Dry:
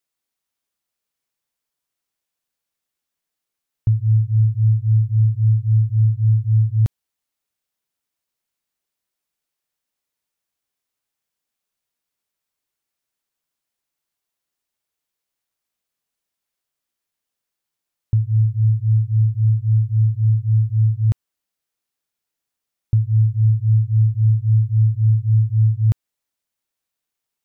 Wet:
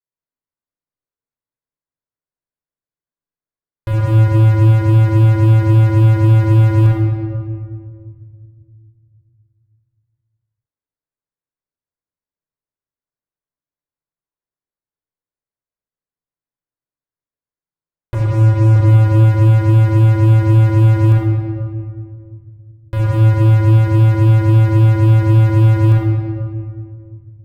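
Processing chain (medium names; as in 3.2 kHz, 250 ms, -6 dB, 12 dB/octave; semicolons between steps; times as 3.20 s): local Wiener filter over 15 samples; 18.14–18.76 s: high-pass 110 Hz 6 dB/octave; waveshaping leveller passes 5; saturation -19 dBFS, distortion -16 dB; reverberation RT60 2.0 s, pre-delay 25 ms, DRR -3 dB; trim -2.5 dB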